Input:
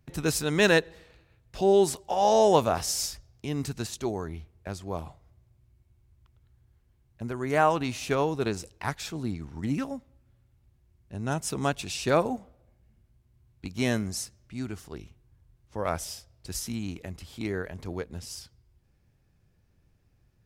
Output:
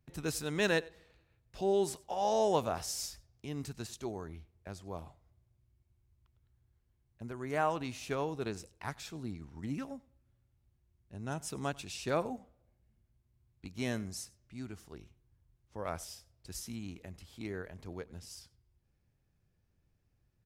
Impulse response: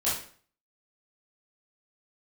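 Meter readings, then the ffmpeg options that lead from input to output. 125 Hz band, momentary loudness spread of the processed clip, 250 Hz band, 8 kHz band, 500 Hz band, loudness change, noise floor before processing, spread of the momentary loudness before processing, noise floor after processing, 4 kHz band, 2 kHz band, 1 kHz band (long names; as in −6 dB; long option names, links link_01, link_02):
−9.0 dB, 19 LU, −9.0 dB, −9.0 dB, −9.0 dB, −9.0 dB, −67 dBFS, 19 LU, −75 dBFS, −9.0 dB, −9.0 dB, −9.0 dB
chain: -af "aecho=1:1:95:0.0708,volume=-9dB"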